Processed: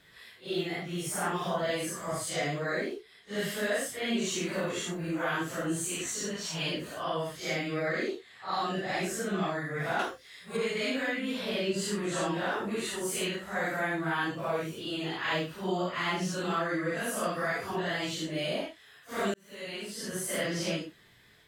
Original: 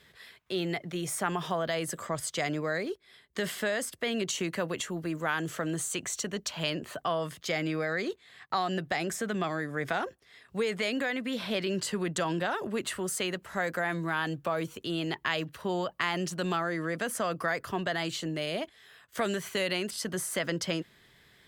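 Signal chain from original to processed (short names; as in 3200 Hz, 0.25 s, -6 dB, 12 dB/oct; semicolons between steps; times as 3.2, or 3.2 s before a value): phase scrambler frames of 0.2 s; 9.99–10.57 high shelf 2300 Hz +11 dB; 19.34–20.3 fade in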